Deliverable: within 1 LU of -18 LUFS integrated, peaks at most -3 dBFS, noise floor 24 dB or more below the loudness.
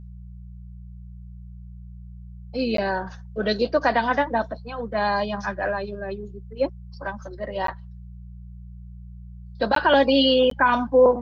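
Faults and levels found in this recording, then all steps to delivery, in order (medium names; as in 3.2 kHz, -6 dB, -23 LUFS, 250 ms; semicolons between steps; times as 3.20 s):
dropouts 4; longest dropout 13 ms; hum 60 Hz; highest harmonic 180 Hz; hum level -38 dBFS; loudness -23.0 LUFS; peak level -6.5 dBFS; loudness target -18.0 LUFS
-> interpolate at 2.77/7.67/9.75/10.50 s, 13 ms; de-hum 60 Hz, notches 3; trim +5 dB; peak limiter -3 dBFS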